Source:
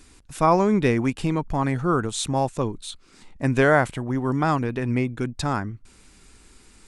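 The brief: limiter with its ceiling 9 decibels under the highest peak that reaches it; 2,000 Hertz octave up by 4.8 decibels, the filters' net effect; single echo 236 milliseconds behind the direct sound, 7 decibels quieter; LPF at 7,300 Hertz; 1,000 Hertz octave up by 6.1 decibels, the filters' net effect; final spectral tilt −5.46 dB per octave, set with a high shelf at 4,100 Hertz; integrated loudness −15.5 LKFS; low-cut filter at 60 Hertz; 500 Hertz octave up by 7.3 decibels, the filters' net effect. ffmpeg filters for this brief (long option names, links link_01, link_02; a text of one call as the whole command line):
ffmpeg -i in.wav -af "highpass=60,lowpass=7300,equalizer=frequency=500:width_type=o:gain=8,equalizer=frequency=1000:width_type=o:gain=4,equalizer=frequency=2000:width_type=o:gain=3.5,highshelf=frequency=4100:gain=3.5,alimiter=limit=-7.5dB:level=0:latency=1,aecho=1:1:236:0.447,volume=4.5dB" out.wav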